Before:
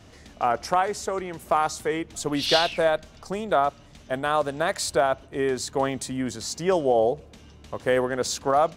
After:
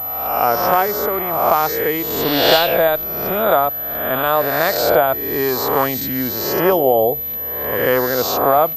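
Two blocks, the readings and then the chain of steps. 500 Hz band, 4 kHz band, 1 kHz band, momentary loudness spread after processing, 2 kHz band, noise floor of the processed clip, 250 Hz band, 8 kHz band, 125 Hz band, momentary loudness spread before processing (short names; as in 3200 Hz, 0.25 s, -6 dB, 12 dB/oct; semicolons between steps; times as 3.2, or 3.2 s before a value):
+8.0 dB, +7.0 dB, +7.5 dB, 6 LU, +8.5 dB, -25 dBFS, +6.5 dB, +1.5 dB, +6.5 dB, 9 LU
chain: spectral swells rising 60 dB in 1.14 s; pulse-width modulation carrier 12000 Hz; gain +4.5 dB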